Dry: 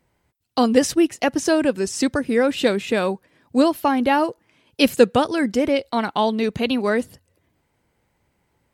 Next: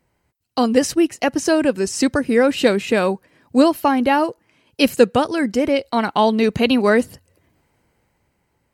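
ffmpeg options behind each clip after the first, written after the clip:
ffmpeg -i in.wav -af "dynaudnorm=framelen=110:gausssize=17:maxgain=7dB,bandreject=frequency=3500:width=11" out.wav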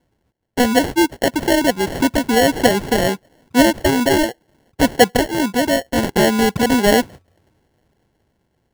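ffmpeg -i in.wav -af "acrusher=samples=36:mix=1:aa=0.000001,volume=1dB" out.wav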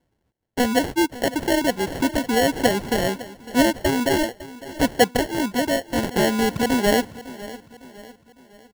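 ffmpeg -i in.wav -af "aecho=1:1:555|1110|1665|2220:0.141|0.0622|0.0273|0.012,volume=-5dB" out.wav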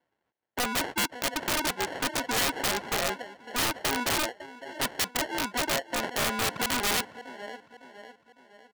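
ffmpeg -i in.wav -af "bandpass=frequency=1400:width_type=q:width=0.69:csg=0,aeval=exprs='(mod(7.5*val(0)+1,2)-1)/7.5':channel_layout=same" out.wav

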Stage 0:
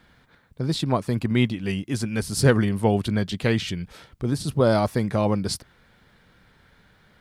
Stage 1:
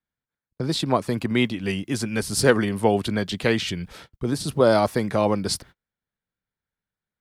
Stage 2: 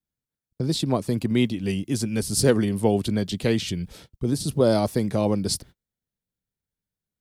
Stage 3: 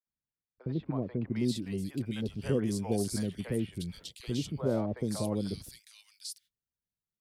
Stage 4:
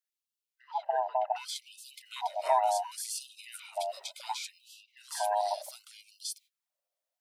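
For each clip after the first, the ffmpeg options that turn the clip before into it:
ffmpeg -i in.wav -filter_complex "[0:a]agate=range=-37dB:threshold=-46dB:ratio=16:detection=peak,acrossover=split=240|1500[link_01][link_02][link_03];[link_01]acompressor=threshold=-33dB:ratio=4[link_04];[link_04][link_02][link_03]amix=inputs=3:normalize=0,volume=3dB" out.wav
ffmpeg -i in.wav -af "equalizer=frequency=1400:width_type=o:width=2.4:gain=-12,volume=2.5dB" out.wav
ffmpeg -i in.wav -filter_complex "[0:a]acrossover=split=550[link_01][link_02];[link_02]alimiter=limit=-21.5dB:level=0:latency=1:release=17[link_03];[link_01][link_03]amix=inputs=2:normalize=0,acrossover=split=660|2400[link_04][link_05][link_06];[link_04]adelay=60[link_07];[link_06]adelay=760[link_08];[link_07][link_05][link_08]amix=inputs=3:normalize=0,volume=-8.5dB" out.wav
ffmpeg -i in.wav -af "afftfilt=real='real(if(lt(b,1008),b+24*(1-2*mod(floor(b/24),2)),b),0)':imag='imag(if(lt(b,1008),b+24*(1-2*mod(floor(b/24),2)),b),0)':win_size=2048:overlap=0.75,afftfilt=real='re*gte(b*sr/1024,370*pow(2600/370,0.5+0.5*sin(2*PI*0.68*pts/sr)))':imag='im*gte(b*sr/1024,370*pow(2600/370,0.5+0.5*sin(2*PI*0.68*pts/sr)))':win_size=1024:overlap=0.75,volume=3.5dB" out.wav

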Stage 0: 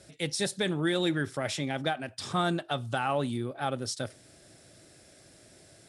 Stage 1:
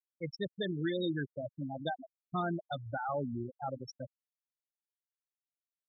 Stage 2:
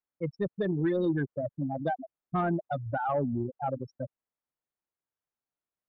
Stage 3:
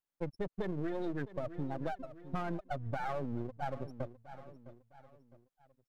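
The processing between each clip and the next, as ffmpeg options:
ffmpeg -i in.wav -af "afftfilt=real='re*gte(hypot(re,im),0.112)':imag='im*gte(hypot(re,im),0.112)':win_size=1024:overlap=0.75,volume=-5dB" out.wav
ffmpeg -i in.wav -af "lowpass=1400,asoftclip=type=tanh:threshold=-25.5dB,volume=7.5dB" out.wav
ffmpeg -i in.wav -af "aeval=exprs='if(lt(val(0),0),0.251*val(0),val(0))':channel_layout=same,aecho=1:1:658|1316|1974:0.119|0.0464|0.0181,acompressor=threshold=-35dB:ratio=6,volume=2.5dB" out.wav

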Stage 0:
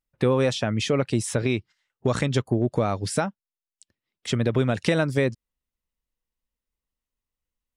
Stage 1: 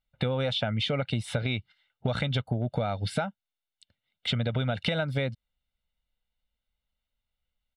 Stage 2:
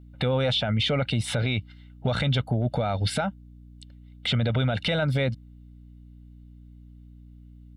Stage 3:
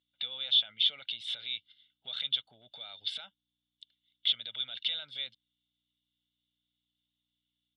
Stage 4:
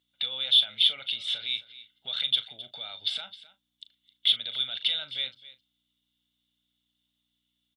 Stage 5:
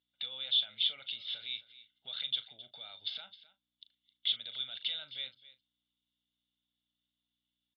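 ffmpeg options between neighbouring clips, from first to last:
ffmpeg -i in.wav -af "highshelf=frequency=4800:width_type=q:width=3:gain=-9.5,aecho=1:1:1.4:0.68,acompressor=threshold=-25dB:ratio=6" out.wav
ffmpeg -i in.wav -af "alimiter=level_in=1dB:limit=-24dB:level=0:latency=1:release=11,volume=-1dB,aeval=exprs='val(0)+0.002*(sin(2*PI*60*n/s)+sin(2*PI*2*60*n/s)/2+sin(2*PI*3*60*n/s)/3+sin(2*PI*4*60*n/s)/4+sin(2*PI*5*60*n/s)/5)':channel_layout=same,volume=8dB" out.wav
ffmpeg -i in.wav -af "bandpass=frequency=3400:width_type=q:width=9.8:csg=0,volume=5dB" out.wav
ffmpeg -i in.wav -filter_complex "[0:a]asplit=2[link_01][link_02];[link_02]asoftclip=type=tanh:threshold=-27dB,volume=-11dB[link_03];[link_01][link_03]amix=inputs=2:normalize=0,asplit=2[link_04][link_05];[link_05]adelay=38,volume=-13dB[link_06];[link_04][link_06]amix=inputs=2:normalize=0,aecho=1:1:263:0.133,volume=4dB" out.wav
ffmpeg -i in.wav -af "aresample=11025,aresample=44100,volume=-9dB" out.wav

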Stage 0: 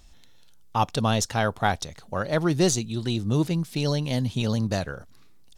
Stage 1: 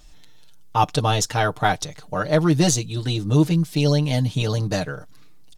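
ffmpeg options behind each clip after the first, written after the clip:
ffmpeg -i in.wav -af "aecho=1:1:6.6:0.8,volume=2dB" out.wav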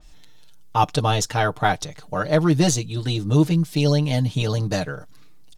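ffmpeg -i in.wav -af "adynamicequalizer=threshold=0.0141:dfrequency=3400:dqfactor=0.7:tfrequency=3400:tqfactor=0.7:attack=5:release=100:ratio=0.375:range=1.5:mode=cutabove:tftype=highshelf" out.wav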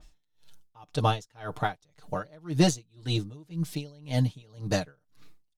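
ffmpeg -i in.wav -af "aeval=exprs='val(0)*pow(10,-32*(0.5-0.5*cos(2*PI*1.9*n/s))/20)':channel_layout=same,volume=-2dB" out.wav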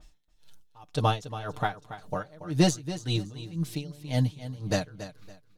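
ffmpeg -i in.wav -af "aecho=1:1:281|562|843:0.224|0.0604|0.0163" out.wav

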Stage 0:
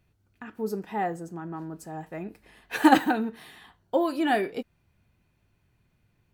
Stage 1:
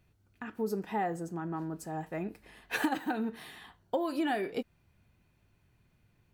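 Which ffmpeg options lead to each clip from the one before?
ffmpeg -i in.wav -af "acompressor=threshold=-27dB:ratio=16" out.wav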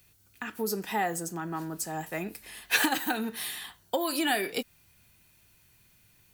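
ffmpeg -i in.wav -filter_complex "[0:a]acrossover=split=170|5700[link_01][link_02][link_03];[link_03]alimiter=level_in=21.5dB:limit=-24dB:level=0:latency=1:release=178,volume=-21.5dB[link_04];[link_01][link_02][link_04]amix=inputs=3:normalize=0,crystalizer=i=8.5:c=0" out.wav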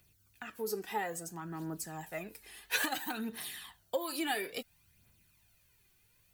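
ffmpeg -i in.wav -af "aphaser=in_gain=1:out_gain=1:delay=2.7:decay=0.49:speed=0.59:type=triangular,volume=-8dB" out.wav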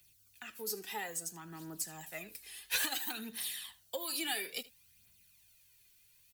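ffmpeg -i in.wav -filter_complex "[0:a]acrossover=split=170|480|2400[link_01][link_02][link_03][link_04];[link_04]aeval=exprs='0.0944*sin(PI/2*2.51*val(0)/0.0944)':channel_layout=same[link_05];[link_01][link_02][link_03][link_05]amix=inputs=4:normalize=0,aecho=1:1:78:0.106,volume=-7dB" out.wav

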